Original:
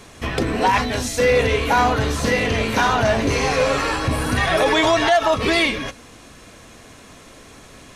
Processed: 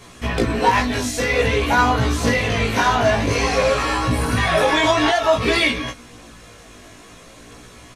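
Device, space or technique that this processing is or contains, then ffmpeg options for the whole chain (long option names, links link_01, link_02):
double-tracked vocal: -filter_complex "[0:a]asplit=2[link_01][link_02];[link_02]adelay=17,volume=-3.5dB[link_03];[link_01][link_03]amix=inputs=2:normalize=0,flanger=delay=16:depth=4.1:speed=0.51,volume=2dB"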